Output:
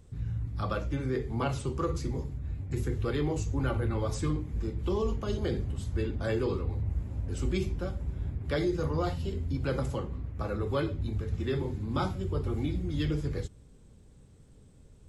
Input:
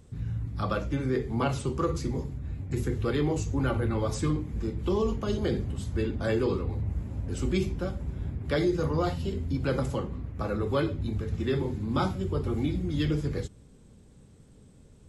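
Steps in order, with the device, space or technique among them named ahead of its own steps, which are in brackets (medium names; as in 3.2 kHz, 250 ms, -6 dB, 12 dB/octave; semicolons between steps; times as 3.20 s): low shelf boost with a cut just above (bass shelf 76 Hz +6 dB; peaking EQ 210 Hz -3 dB 0.77 oct); trim -3 dB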